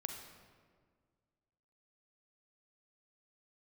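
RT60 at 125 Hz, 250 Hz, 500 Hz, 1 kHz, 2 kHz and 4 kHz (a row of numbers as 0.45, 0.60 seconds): 2.2, 2.1, 1.9, 1.6, 1.4, 1.1 seconds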